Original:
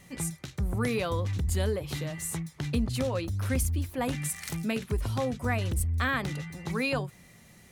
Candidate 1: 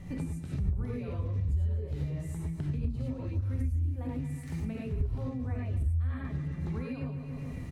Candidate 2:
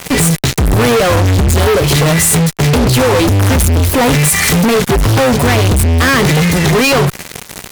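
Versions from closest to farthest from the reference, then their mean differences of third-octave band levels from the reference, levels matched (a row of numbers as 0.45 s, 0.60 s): 2, 1; 8.0 dB, 11.0 dB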